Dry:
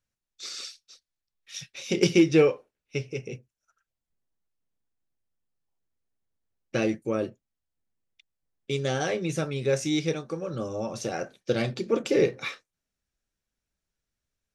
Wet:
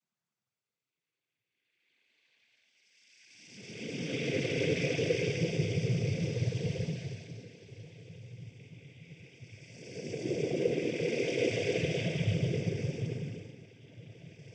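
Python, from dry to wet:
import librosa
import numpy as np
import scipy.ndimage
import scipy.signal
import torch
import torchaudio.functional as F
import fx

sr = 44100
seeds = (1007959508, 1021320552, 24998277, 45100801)

y = fx.level_steps(x, sr, step_db=19)
y = fx.paulstretch(y, sr, seeds[0], factor=35.0, window_s=0.05, from_s=2.83)
y = fx.noise_vocoder(y, sr, seeds[1], bands=16)
y = y * librosa.db_to_amplitude(7.5)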